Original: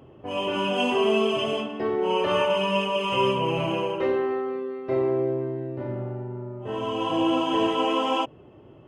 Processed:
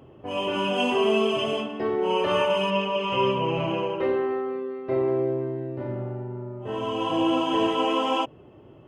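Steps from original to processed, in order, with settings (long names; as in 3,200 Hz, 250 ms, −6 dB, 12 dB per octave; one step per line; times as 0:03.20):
0:02.70–0:05.08: high-frequency loss of the air 110 metres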